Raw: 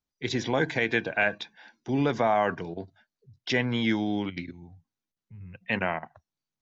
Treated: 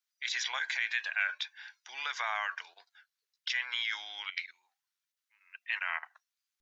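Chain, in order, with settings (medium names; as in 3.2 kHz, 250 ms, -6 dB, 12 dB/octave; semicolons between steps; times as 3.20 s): high-pass 1.3 kHz 24 dB/octave; in parallel at 0 dB: compressor with a negative ratio -37 dBFS, ratio -0.5; on the sum: warped record 33 1/3 rpm, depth 100 cents; trim -4.5 dB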